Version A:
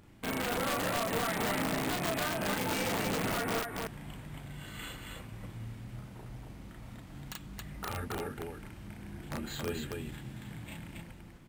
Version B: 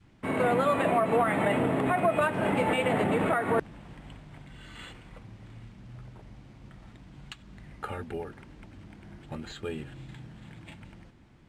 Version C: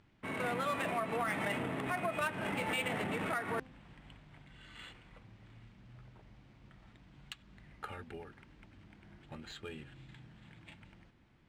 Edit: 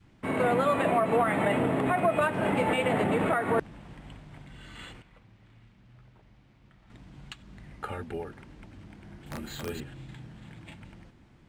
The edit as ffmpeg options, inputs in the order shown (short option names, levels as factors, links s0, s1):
-filter_complex "[1:a]asplit=3[s0][s1][s2];[s0]atrim=end=5.022[s3];[2:a]atrim=start=5.018:end=6.902[s4];[s1]atrim=start=6.898:end=9.262[s5];[0:a]atrim=start=9.258:end=9.802[s6];[s2]atrim=start=9.798[s7];[s3][s4]acrossfade=d=0.004:c1=hsin:c2=hsin[s8];[s8][s5]acrossfade=d=0.004:c1=hsin:c2=hsin[s9];[s9][s6]acrossfade=d=0.004:c1=hsin:c2=hsin[s10];[s10][s7]acrossfade=d=0.004:c1=hsin:c2=hsin"